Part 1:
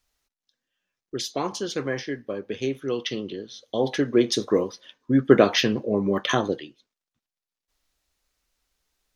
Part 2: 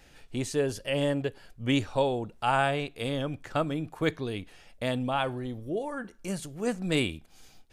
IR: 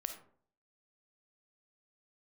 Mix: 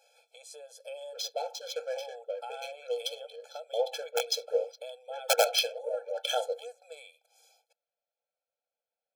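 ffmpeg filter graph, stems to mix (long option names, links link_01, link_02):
-filter_complex "[0:a]bandreject=frequency=800:width=19,adynamicequalizer=threshold=0.00794:dfrequency=3600:dqfactor=0.75:tfrequency=3600:tqfactor=0.75:attack=5:release=100:ratio=0.375:range=1.5:mode=boostabove:tftype=bell,adynamicsmooth=sensitivity=7:basefreq=1700,volume=-2.5dB[link_01];[1:a]acompressor=threshold=-34dB:ratio=8,volume=-2dB[link_02];[link_01][link_02]amix=inputs=2:normalize=0,aeval=exprs='(mod(3.35*val(0)+1,2)-1)/3.35':channel_layout=same,equalizer=frequency=1700:width_type=o:width=0.5:gain=-13.5,afftfilt=real='re*eq(mod(floor(b*sr/1024/440),2),1)':imag='im*eq(mod(floor(b*sr/1024/440),2),1)':win_size=1024:overlap=0.75"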